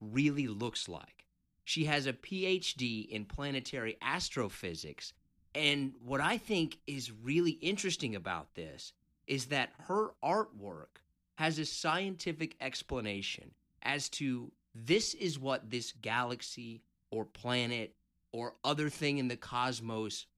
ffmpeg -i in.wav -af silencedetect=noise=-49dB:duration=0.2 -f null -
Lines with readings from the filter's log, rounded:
silence_start: 1.20
silence_end: 1.67 | silence_duration: 0.47
silence_start: 5.10
silence_end: 5.55 | silence_duration: 0.45
silence_start: 8.90
silence_end: 9.28 | silence_duration: 0.39
silence_start: 10.97
silence_end: 11.37 | silence_duration: 0.41
silence_start: 13.49
silence_end: 13.82 | silence_duration: 0.33
silence_start: 14.49
silence_end: 14.75 | silence_duration: 0.26
silence_start: 16.77
silence_end: 17.12 | silence_duration: 0.35
silence_start: 17.88
silence_end: 18.34 | silence_duration: 0.46